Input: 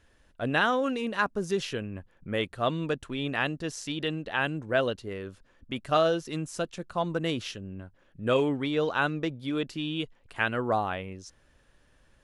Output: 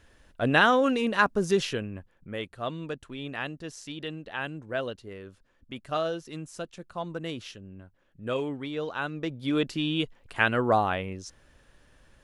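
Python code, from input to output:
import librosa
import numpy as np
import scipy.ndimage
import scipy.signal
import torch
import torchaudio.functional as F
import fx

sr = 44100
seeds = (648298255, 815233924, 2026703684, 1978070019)

y = fx.gain(x, sr, db=fx.line((1.57, 4.5), (2.34, -5.5), (9.08, -5.5), (9.51, 4.0)))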